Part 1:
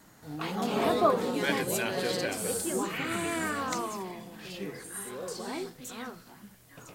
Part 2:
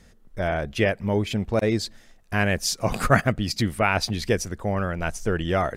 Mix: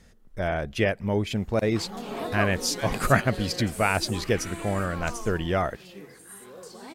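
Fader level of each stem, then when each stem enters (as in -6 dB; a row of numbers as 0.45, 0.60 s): -6.0, -2.0 dB; 1.35, 0.00 s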